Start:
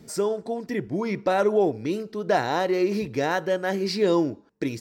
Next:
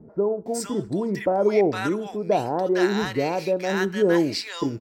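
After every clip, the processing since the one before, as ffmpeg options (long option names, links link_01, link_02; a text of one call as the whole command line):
ffmpeg -i in.wav -filter_complex "[0:a]acrossover=split=1000[link_01][link_02];[link_02]adelay=460[link_03];[link_01][link_03]amix=inputs=2:normalize=0,adynamicequalizer=threshold=0.00141:dfrequency=7700:dqfactor=5.2:tfrequency=7700:tqfactor=5.2:attack=5:release=100:ratio=0.375:range=2.5:mode=boostabove:tftype=bell,volume=2dB" out.wav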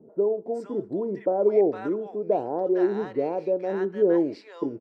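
ffmpeg -i in.wav -af "bandpass=frequency=440:width_type=q:width=1.3:csg=0" out.wav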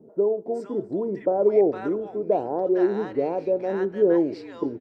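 ffmpeg -i in.wav -filter_complex "[0:a]asplit=4[link_01][link_02][link_03][link_04];[link_02]adelay=292,afreqshift=-43,volume=-22dB[link_05];[link_03]adelay=584,afreqshift=-86,volume=-28dB[link_06];[link_04]adelay=876,afreqshift=-129,volume=-34dB[link_07];[link_01][link_05][link_06][link_07]amix=inputs=4:normalize=0,volume=1.5dB" out.wav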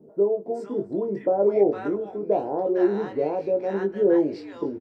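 ffmpeg -i in.wav -filter_complex "[0:a]asplit=2[link_01][link_02];[link_02]adelay=20,volume=-4.5dB[link_03];[link_01][link_03]amix=inputs=2:normalize=0,volume=-1.5dB" out.wav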